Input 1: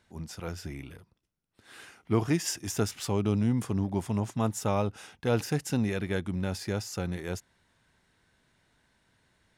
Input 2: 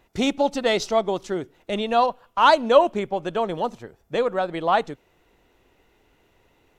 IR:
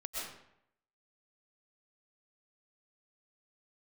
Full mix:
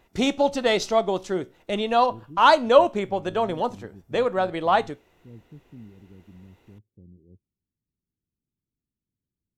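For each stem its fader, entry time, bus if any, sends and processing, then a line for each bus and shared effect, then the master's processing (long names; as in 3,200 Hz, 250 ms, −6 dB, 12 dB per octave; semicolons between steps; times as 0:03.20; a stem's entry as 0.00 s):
−16.0 dB, 0.00 s, no send, inverse Chebyshev low-pass filter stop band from 1,600 Hz, stop band 70 dB
+2.5 dB, 0.00 s, no send, tuned comb filter 62 Hz, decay 0.27 s, harmonics all, mix 40%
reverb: not used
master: no processing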